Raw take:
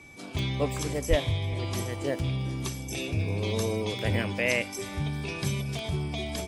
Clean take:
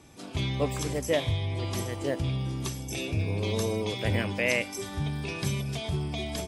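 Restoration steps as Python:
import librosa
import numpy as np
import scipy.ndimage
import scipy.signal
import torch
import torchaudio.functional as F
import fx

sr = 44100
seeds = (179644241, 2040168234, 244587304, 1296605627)

y = fx.fix_declick_ar(x, sr, threshold=10.0)
y = fx.notch(y, sr, hz=2300.0, q=30.0)
y = fx.highpass(y, sr, hz=140.0, slope=24, at=(1.09, 1.21), fade=0.02)
y = fx.fix_echo_inverse(y, sr, delay_ms=397, level_db=-23.0)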